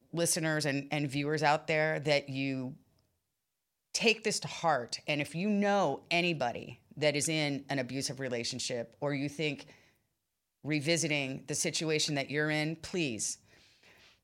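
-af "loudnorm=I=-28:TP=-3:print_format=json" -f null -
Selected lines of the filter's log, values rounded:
"input_i" : "-31.9",
"input_tp" : "-12.8",
"input_lra" : "2.4",
"input_thresh" : "-42.6",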